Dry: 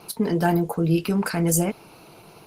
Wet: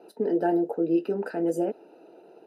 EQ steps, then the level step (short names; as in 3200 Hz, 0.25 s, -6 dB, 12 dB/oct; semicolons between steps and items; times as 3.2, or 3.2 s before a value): running mean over 40 samples; HPF 320 Hz 24 dB/oct; +4.0 dB